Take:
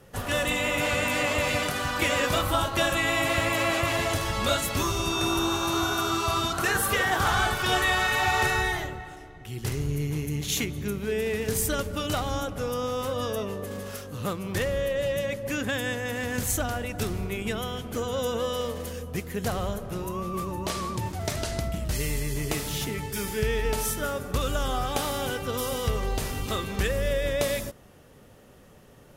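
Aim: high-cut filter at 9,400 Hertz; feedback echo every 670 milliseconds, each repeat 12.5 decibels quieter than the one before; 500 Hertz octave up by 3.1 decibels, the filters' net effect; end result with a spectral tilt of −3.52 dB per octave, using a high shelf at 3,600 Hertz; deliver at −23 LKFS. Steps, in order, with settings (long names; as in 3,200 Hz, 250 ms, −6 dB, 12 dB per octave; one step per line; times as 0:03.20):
low-pass filter 9,400 Hz
parametric band 500 Hz +3.5 dB
high-shelf EQ 3,600 Hz +4.5 dB
repeating echo 670 ms, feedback 24%, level −12.5 dB
level +2.5 dB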